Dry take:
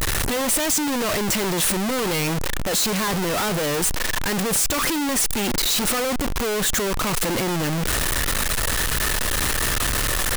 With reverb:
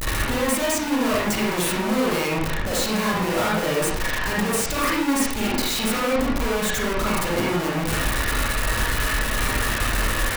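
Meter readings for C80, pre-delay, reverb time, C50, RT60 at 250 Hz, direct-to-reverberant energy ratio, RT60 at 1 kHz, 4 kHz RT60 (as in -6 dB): 4.0 dB, 38 ms, 0.65 s, -1.5 dB, 0.60 s, -6.5 dB, 0.65 s, 0.45 s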